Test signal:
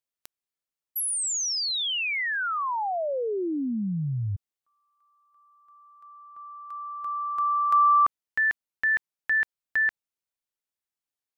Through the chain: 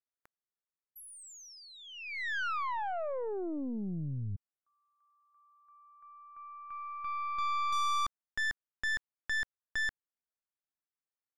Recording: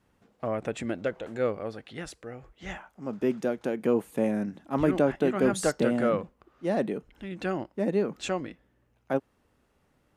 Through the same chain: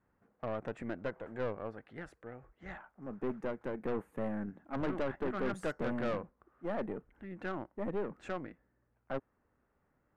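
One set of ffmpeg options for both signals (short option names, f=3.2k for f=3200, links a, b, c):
-af "highshelf=f=2.5k:t=q:w=1.5:g=-14,aeval=exprs='(tanh(17.8*val(0)+0.6)-tanh(0.6))/17.8':c=same,volume=-5dB"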